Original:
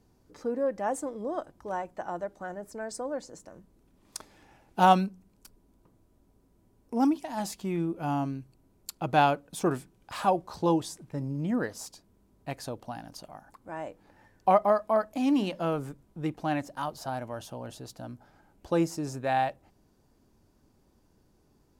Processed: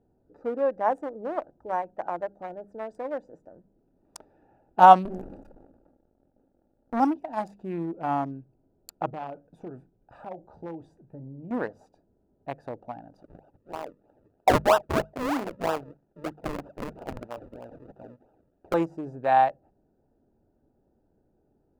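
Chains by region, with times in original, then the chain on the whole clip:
5.05–7 minimum comb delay 3.6 ms + sample leveller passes 2 + sustainer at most 42 dB/s
9.1–11.51 low shelf 140 Hz +6.5 dB + compressor 3:1, threshold -32 dBFS + flange 1.9 Hz, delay 5.7 ms, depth 5.4 ms, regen -71%
13.22–18.74 LPF 8700 Hz 24 dB/oct + tilt +2 dB/oct + decimation with a swept rate 40× 3.1 Hz
whole clip: Wiener smoothing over 41 samples; bell 890 Hz +13.5 dB 2.3 oct; notches 50/100/150/200 Hz; gain -5 dB

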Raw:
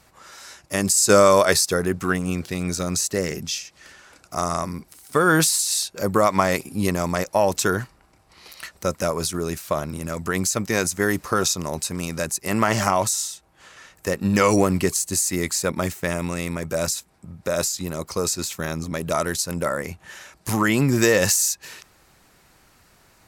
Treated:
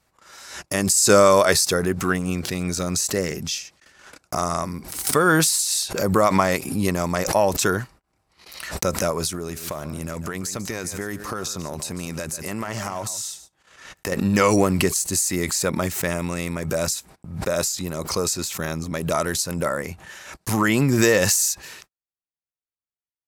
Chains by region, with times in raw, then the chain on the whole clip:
9.33–14.12 compressor, threshold -25 dBFS + echo 0.145 s -14.5 dB
whole clip: gate -44 dBFS, range -51 dB; backwards sustainer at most 73 dB/s

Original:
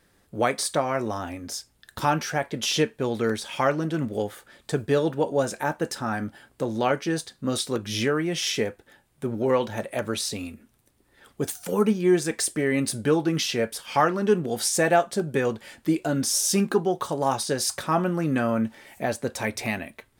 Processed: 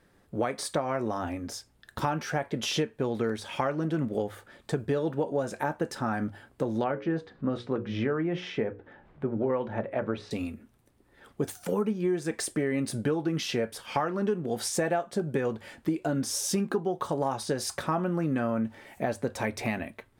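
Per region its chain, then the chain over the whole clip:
6.84–10.31 LPF 2100 Hz + upward compressor, threshold -43 dBFS + notches 60/120/180/240/300/360/420/480/540 Hz
whole clip: high shelf 2600 Hz -9.5 dB; notches 50/100 Hz; compressor, threshold -26 dBFS; gain +1.5 dB

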